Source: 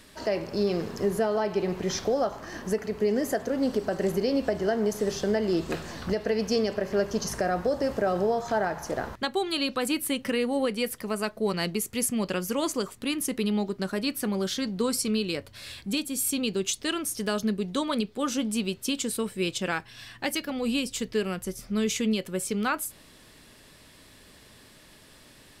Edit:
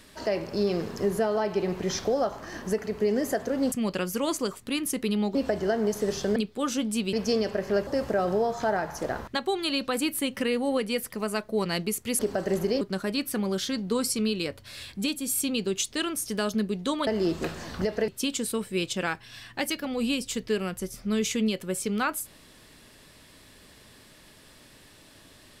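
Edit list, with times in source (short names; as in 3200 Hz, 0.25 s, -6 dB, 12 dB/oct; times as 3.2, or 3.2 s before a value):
3.72–4.34 swap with 12.07–13.7
5.35–6.36 swap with 17.96–18.73
7.1–7.75 cut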